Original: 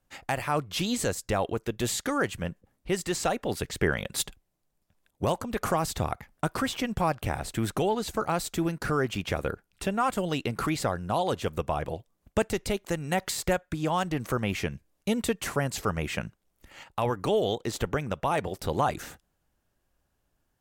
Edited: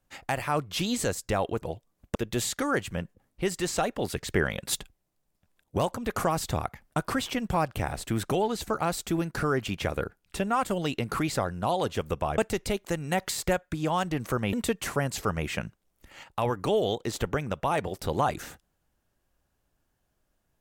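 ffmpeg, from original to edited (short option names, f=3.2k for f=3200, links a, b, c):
-filter_complex "[0:a]asplit=5[a][b][c][d][e];[a]atrim=end=1.622[f];[b]atrim=start=11.848:end=12.382[g];[c]atrim=start=1.618:end=11.852[h];[d]atrim=start=12.378:end=14.532[i];[e]atrim=start=15.128[j];[f][g]acrossfade=d=0.004:c1=hsin:c2=hsin[k];[k][h]acrossfade=d=0.004:c1=hsin:c2=hsin[l];[l][i]acrossfade=d=0.004:c1=hsin:c2=hsin[m];[m][j]acrossfade=d=0.004:c1=hsin:c2=hsin"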